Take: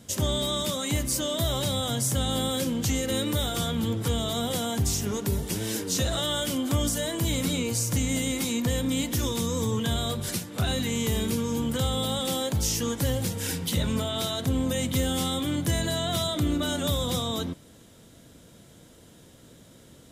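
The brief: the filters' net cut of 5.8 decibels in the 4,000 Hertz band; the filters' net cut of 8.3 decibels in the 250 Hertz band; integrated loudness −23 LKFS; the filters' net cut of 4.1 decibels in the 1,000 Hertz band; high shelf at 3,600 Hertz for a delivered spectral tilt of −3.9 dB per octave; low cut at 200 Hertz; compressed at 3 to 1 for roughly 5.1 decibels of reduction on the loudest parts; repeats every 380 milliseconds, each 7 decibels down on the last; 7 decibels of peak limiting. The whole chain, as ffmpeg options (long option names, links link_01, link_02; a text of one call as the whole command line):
ffmpeg -i in.wav -af "highpass=200,equalizer=frequency=250:width_type=o:gain=-7.5,equalizer=frequency=1000:width_type=o:gain=-4.5,highshelf=frequency=3600:gain=-5.5,equalizer=frequency=4000:width_type=o:gain=-3.5,acompressor=threshold=-36dB:ratio=3,alimiter=level_in=6.5dB:limit=-24dB:level=0:latency=1,volume=-6.5dB,aecho=1:1:380|760|1140|1520|1900:0.447|0.201|0.0905|0.0407|0.0183,volume=16dB" out.wav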